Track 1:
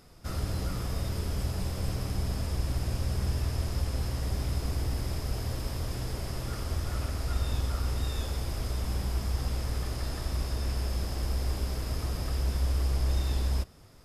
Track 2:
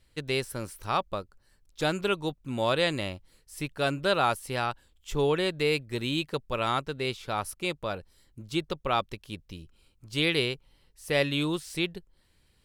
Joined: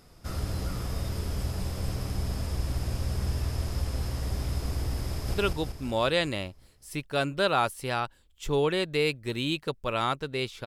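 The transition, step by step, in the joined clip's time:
track 1
5.08–5.34 s: echo throw 190 ms, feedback 60%, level -1 dB
5.34 s: go over to track 2 from 2.00 s

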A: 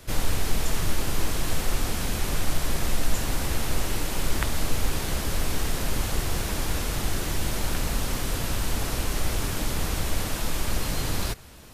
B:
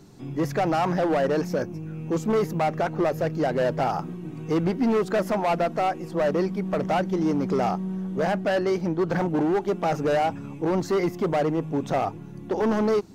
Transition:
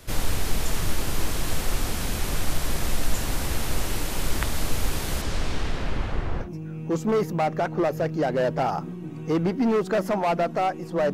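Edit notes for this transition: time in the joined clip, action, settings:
A
5.21–6.50 s: low-pass 7.5 kHz -> 1.3 kHz
6.44 s: go over to B from 1.65 s, crossfade 0.12 s

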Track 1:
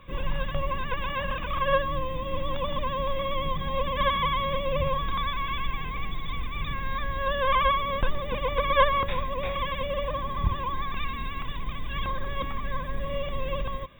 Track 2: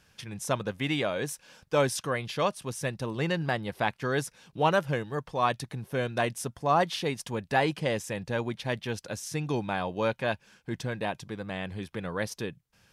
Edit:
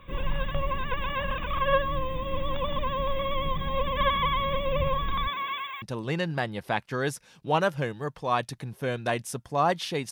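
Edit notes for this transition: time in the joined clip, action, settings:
track 1
5.27–5.82 s: high-pass 200 Hz -> 1.3 kHz
5.82 s: go over to track 2 from 2.93 s

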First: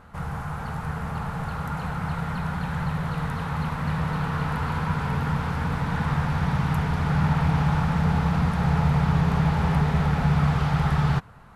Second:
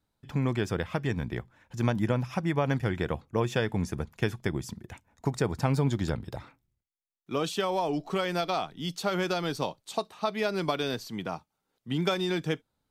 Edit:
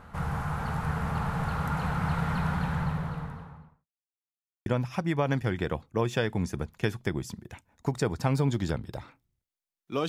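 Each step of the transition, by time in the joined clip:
first
2.39–3.87 s: studio fade out
3.87–4.66 s: mute
4.66 s: go over to second from 2.05 s

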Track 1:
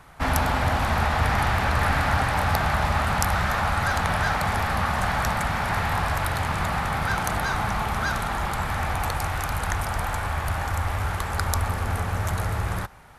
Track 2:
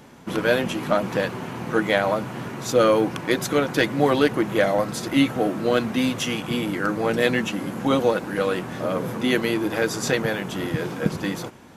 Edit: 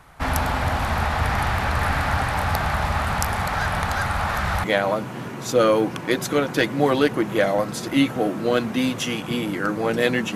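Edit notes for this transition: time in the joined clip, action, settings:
track 1
3.25–4.64 s: reverse
4.64 s: go over to track 2 from 1.84 s

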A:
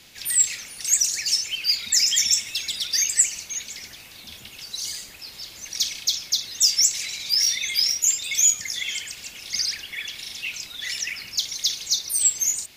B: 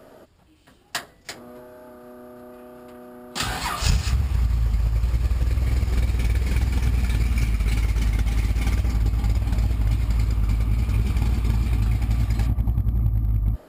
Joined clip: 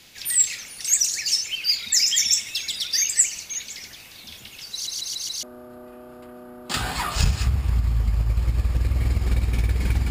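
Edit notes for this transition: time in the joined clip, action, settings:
A
4.73 s: stutter in place 0.14 s, 5 plays
5.43 s: go over to B from 2.09 s

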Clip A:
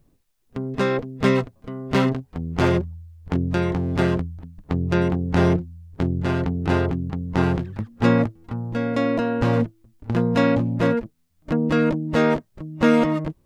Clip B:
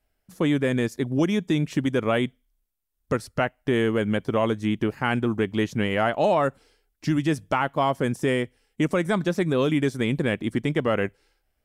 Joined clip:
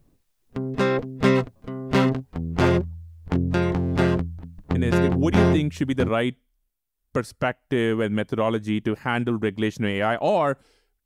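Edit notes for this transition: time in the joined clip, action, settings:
clip A
5.42 s: go over to clip B from 1.38 s, crossfade 1.34 s logarithmic

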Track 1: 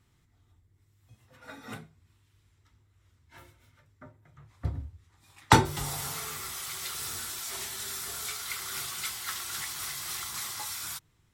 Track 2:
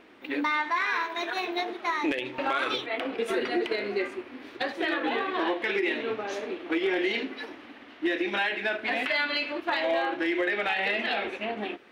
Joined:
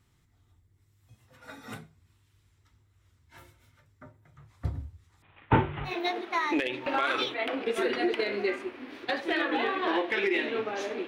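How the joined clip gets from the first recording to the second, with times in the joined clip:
track 1
5.22–5.94 s: CVSD coder 16 kbps
5.89 s: go over to track 2 from 1.41 s, crossfade 0.10 s

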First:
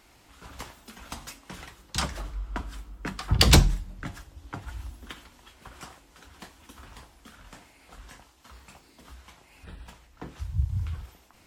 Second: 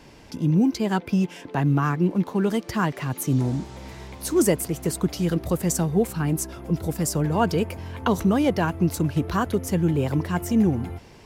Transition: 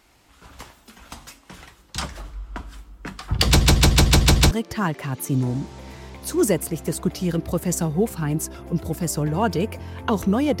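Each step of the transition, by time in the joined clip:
first
3.46 s: stutter in place 0.15 s, 7 plays
4.51 s: go over to second from 2.49 s

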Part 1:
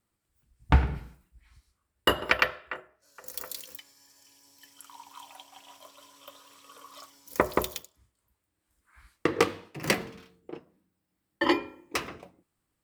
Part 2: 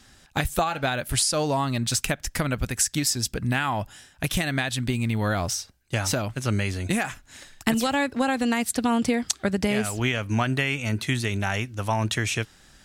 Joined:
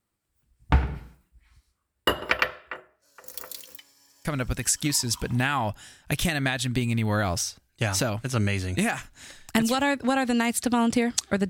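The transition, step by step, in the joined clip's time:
part 1
4.84 s: go over to part 2 from 2.96 s, crossfade 1.18 s logarithmic

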